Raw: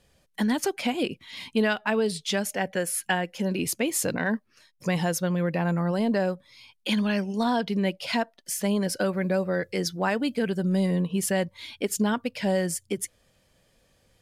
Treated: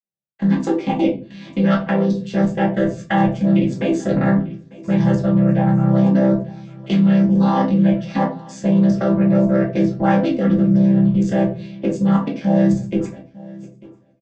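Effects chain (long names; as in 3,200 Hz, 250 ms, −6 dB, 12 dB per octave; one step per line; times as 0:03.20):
channel vocoder with a chord as carrier major triad, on C3
dynamic equaliser 220 Hz, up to −4 dB, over −32 dBFS, Q 1
on a send: repeating echo 895 ms, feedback 46%, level −20 dB
on the sum: automatic gain control gain up to 13 dB
downward expander −38 dBFS
output level in coarse steps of 21 dB
rectangular room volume 200 cubic metres, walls furnished, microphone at 2.2 metres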